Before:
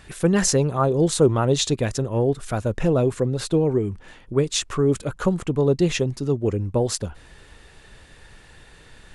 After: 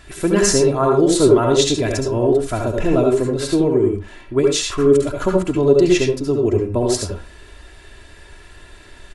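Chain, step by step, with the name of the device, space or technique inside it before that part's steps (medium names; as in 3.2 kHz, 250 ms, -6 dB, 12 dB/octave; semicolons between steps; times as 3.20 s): microphone above a desk (comb 3 ms, depth 59%; reverberation RT60 0.35 s, pre-delay 66 ms, DRR 1 dB); trim +1.5 dB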